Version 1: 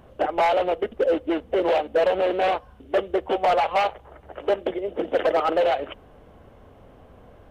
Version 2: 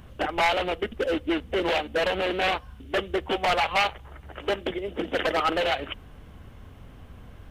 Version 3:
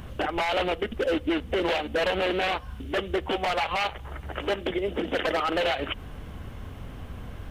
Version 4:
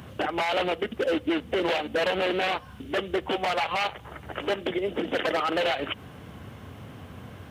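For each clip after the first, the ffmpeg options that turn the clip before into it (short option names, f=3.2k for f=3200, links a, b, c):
-af "equalizer=f=570:t=o:w=2:g=-14.5,volume=7.5dB"
-filter_complex "[0:a]asplit=2[a][b];[b]acompressor=threshold=-32dB:ratio=6,volume=1.5dB[c];[a][c]amix=inputs=2:normalize=0,alimiter=limit=-17dB:level=0:latency=1:release=80"
-af "highpass=f=92:w=0.5412,highpass=f=92:w=1.3066"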